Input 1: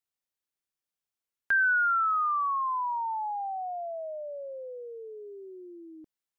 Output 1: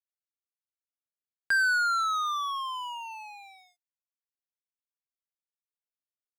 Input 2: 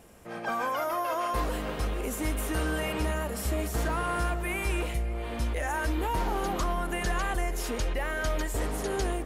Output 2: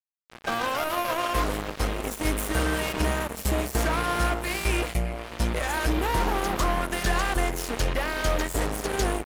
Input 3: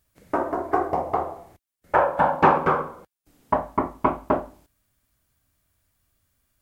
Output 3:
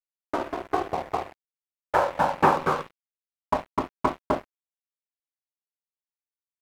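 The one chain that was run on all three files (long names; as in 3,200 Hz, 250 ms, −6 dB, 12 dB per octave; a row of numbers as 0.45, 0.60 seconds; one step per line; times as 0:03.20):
dead-zone distortion −32 dBFS
loudness normalisation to −27 LKFS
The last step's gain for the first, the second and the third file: +3.0, +9.0, −2.0 decibels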